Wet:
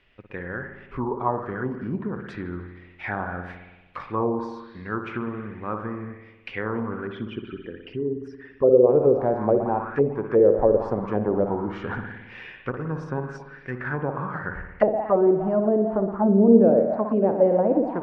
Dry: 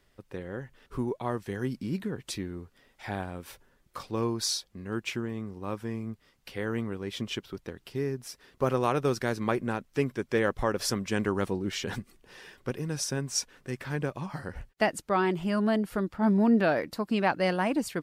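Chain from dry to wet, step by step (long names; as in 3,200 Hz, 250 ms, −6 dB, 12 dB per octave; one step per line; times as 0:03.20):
0:07.07–0:08.89: spectral envelope exaggerated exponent 2
spring reverb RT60 1.2 s, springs 56 ms, chirp 20 ms, DRR 5 dB
envelope-controlled low-pass 490–2,700 Hz down, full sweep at −21.5 dBFS
level +1.5 dB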